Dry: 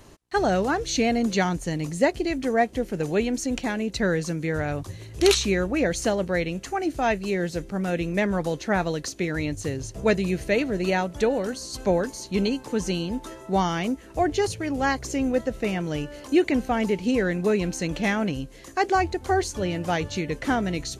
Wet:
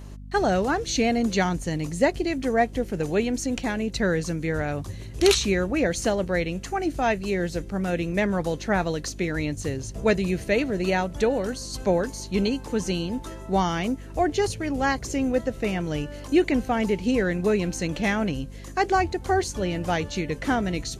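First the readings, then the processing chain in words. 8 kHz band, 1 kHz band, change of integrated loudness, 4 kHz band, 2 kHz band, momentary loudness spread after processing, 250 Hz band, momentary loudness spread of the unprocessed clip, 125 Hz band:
0.0 dB, 0.0 dB, 0.0 dB, 0.0 dB, 0.0 dB, 6 LU, 0.0 dB, 6 LU, +0.5 dB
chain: mains hum 50 Hz, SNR 15 dB

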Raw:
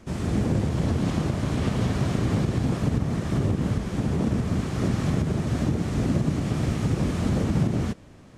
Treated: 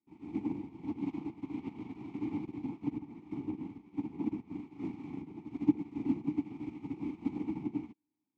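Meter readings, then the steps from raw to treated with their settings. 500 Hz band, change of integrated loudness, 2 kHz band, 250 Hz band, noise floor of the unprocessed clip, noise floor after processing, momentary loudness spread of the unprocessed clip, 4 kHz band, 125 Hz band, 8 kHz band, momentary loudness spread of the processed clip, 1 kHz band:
−16.5 dB, −13.0 dB, −20.0 dB, −9.0 dB, −47 dBFS, −85 dBFS, 2 LU, below −25 dB, −24.5 dB, below −30 dB, 10 LU, −16.0 dB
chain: formant filter u
expander for the loud parts 2.5 to 1, over −52 dBFS
level +8 dB

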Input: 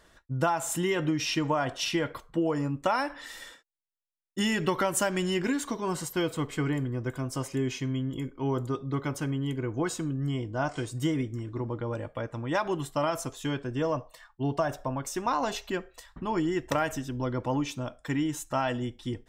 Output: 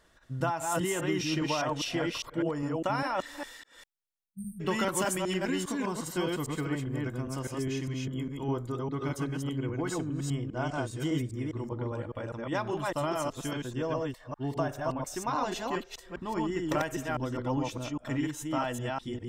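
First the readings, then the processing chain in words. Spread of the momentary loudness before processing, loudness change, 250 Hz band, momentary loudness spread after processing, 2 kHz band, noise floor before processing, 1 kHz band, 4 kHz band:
7 LU, −2.0 dB, −2.0 dB, 6 LU, −2.5 dB, −65 dBFS, −2.0 dB, −2.5 dB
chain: delay that plays each chunk backwards 202 ms, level −1 dB
time-frequency box erased 0:04.24–0:04.60, 210–8,300 Hz
level −4.5 dB

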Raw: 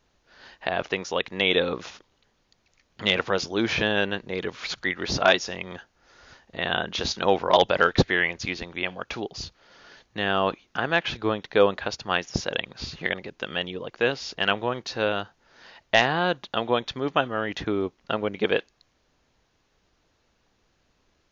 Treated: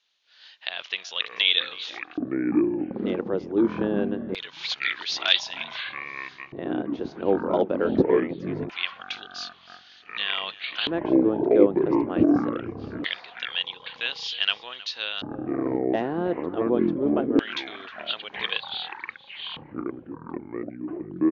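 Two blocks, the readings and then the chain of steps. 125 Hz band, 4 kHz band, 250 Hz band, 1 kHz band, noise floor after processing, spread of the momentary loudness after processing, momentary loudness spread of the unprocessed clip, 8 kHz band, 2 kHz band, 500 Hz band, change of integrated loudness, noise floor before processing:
−3.0 dB, +1.5 dB, +7.5 dB, −7.0 dB, −51 dBFS, 14 LU, 12 LU, can't be measured, −5.0 dB, 0.0 dB, −0.5 dB, −69 dBFS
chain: slap from a distant wall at 54 metres, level −17 dB
delay with pitch and tempo change per echo 220 ms, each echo −7 semitones, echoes 3
auto-filter band-pass square 0.23 Hz 320–3,500 Hz
level +6 dB

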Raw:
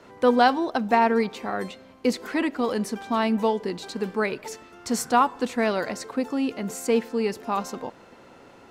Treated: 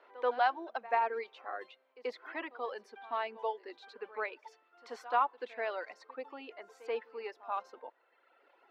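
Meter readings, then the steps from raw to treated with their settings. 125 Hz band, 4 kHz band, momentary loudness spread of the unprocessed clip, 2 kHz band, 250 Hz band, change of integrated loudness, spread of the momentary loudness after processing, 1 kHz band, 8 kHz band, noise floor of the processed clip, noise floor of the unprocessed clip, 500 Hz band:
below −40 dB, −15.5 dB, 12 LU, −10.0 dB, −28.0 dB, −12.0 dB, 17 LU, −9.5 dB, below −30 dB, −72 dBFS, −50 dBFS, −13.0 dB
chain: Bessel high-pass filter 630 Hz, order 6
reverb reduction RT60 1.6 s
high-frequency loss of the air 340 metres
echo ahead of the sound 84 ms −18.5 dB
level −6 dB

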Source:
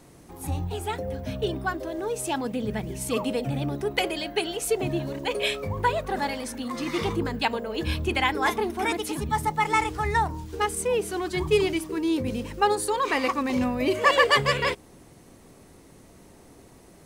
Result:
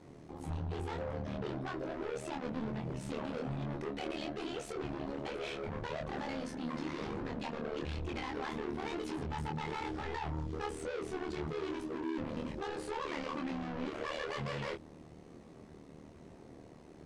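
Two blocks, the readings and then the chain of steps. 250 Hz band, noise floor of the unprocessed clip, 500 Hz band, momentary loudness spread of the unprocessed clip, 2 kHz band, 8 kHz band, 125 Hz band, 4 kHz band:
−10.0 dB, −52 dBFS, −13.0 dB, 8 LU, −17.0 dB, −20.0 dB, −9.0 dB, −17.0 dB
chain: high-pass filter 110 Hz 6 dB per octave
low-shelf EQ 500 Hz +7.5 dB
mains-hum notches 60/120/180/240/300 Hz
brickwall limiter −17 dBFS, peak gain reduction 10.5 dB
hard clipping −31.5 dBFS, distortion −6 dB
pitch vibrato 9 Hz 21 cents
amplitude modulation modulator 75 Hz, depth 70%
chorus effect 1.1 Hz, depth 3 ms
high-frequency loss of the air 97 metres
level +1 dB

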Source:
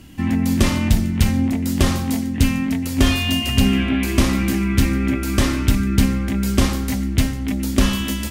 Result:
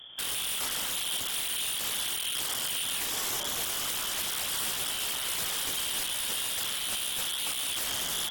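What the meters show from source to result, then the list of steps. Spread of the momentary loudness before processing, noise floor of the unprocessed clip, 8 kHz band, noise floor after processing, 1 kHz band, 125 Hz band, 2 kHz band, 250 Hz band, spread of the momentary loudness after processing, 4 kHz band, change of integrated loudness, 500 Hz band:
4 LU, −25 dBFS, +0.5 dB, −34 dBFS, −9.5 dB, −33.5 dB, −9.5 dB, −33.0 dB, 1 LU, −2.0 dB, −9.5 dB, −16.5 dB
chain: lower of the sound and its delayed copy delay 0.5 ms
downward compressor 3 to 1, threshold −18 dBFS, peak gain reduction 7 dB
voice inversion scrambler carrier 3,400 Hz
wrap-around overflow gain 21.5 dB
level −5.5 dB
AAC 64 kbit/s 48,000 Hz

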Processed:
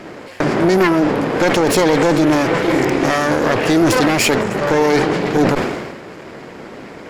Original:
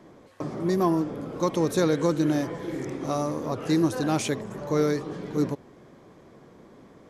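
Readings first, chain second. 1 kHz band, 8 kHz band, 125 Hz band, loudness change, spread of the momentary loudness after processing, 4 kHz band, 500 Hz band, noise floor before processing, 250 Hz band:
+14.0 dB, +13.0 dB, +8.5 dB, +11.5 dB, 21 LU, +15.5 dB, +12.0 dB, −52 dBFS, +10.0 dB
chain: lower of the sound and its delayed copy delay 0.4 ms
mid-hump overdrive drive 11 dB, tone 4,000 Hz, clips at −12.5 dBFS
boost into a limiter +20.5 dB
level that may fall only so fast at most 42 dB per second
level −4 dB

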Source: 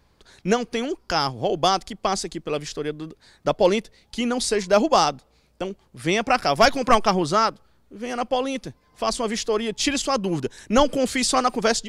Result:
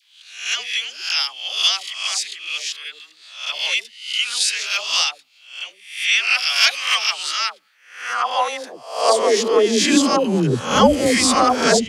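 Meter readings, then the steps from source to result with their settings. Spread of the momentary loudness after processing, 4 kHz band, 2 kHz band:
14 LU, +9.5 dB, +7.5 dB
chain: peak hold with a rise ahead of every peak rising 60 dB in 0.54 s
all-pass dispersion lows, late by 121 ms, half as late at 620 Hz
high-pass filter sweep 2,700 Hz → 82 Hz, 0:07.39–0:10.89
level +3 dB

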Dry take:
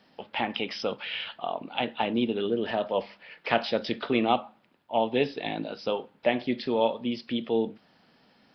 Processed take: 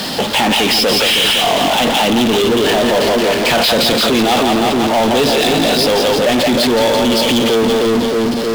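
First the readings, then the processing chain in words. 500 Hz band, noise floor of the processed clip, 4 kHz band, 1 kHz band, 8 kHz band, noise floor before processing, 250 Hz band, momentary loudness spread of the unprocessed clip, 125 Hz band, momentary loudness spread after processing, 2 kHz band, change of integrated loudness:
+15.5 dB, −17 dBFS, +22.5 dB, +15.0 dB, can't be measured, −63 dBFS, +16.0 dB, 7 LU, +17.5 dB, 3 LU, +17.5 dB, +17.0 dB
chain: high shelf with overshoot 2,900 Hz +6 dB, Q 1.5
echo with a time of its own for lows and highs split 460 Hz, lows 313 ms, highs 170 ms, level −7 dB
in parallel at +2.5 dB: compressor whose output falls as the input rises −34 dBFS
on the sum: power curve on the samples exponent 0.35

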